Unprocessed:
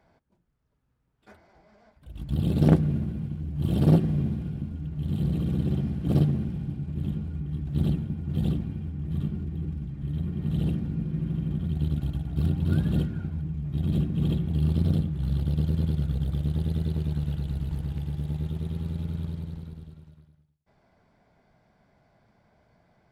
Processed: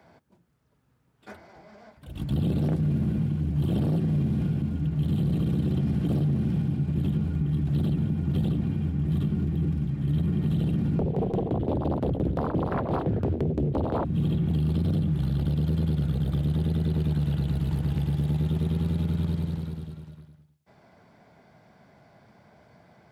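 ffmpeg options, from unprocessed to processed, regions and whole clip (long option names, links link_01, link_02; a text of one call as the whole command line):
ffmpeg -i in.wav -filter_complex "[0:a]asettb=1/sr,asplit=3[link_01][link_02][link_03];[link_01]atrim=end=10.994[link_04];[link_02]atrim=start=10.99:end=14.05,asetpts=PTS-STARTPTS,afade=type=in:duration=0.004:curve=qsin,afade=type=out:start_time=3.056:duration=0.004:curve=qsin,bass=frequency=250:gain=12,treble=frequency=4000:gain=-12,aeval=exprs='0.794*sin(PI/2*8.91*val(0)/0.794)':channel_layout=same,aeval=exprs='val(0)*pow(10,-28*if(lt(mod(5.8*n/s,1),2*abs(5.8)/1000),1-mod(5.8*n/s,1)/(2*abs(5.8)/1000),(mod(5.8*n/s,1)-2*abs(5.8)/1000)/(1-2*abs(5.8)/1000))/20)':channel_layout=same[link_05];[link_03]atrim=start=14.046[link_06];[link_04][link_05]acrossfade=duration=0.004:curve1=hsin:curve2=qsin[link_07];[link_07][link_06]acrossfade=duration=0.004:curve1=qsin:curve2=hsin,highpass=94,acrossover=split=120|3100[link_08][link_09][link_10];[link_08]acompressor=threshold=-31dB:ratio=4[link_11];[link_09]acompressor=threshold=-28dB:ratio=4[link_12];[link_10]acompressor=threshold=-59dB:ratio=4[link_13];[link_11][link_12][link_13]amix=inputs=3:normalize=0,alimiter=level_in=3dB:limit=-24dB:level=0:latency=1:release=42,volume=-3dB,volume=8.5dB" out.wav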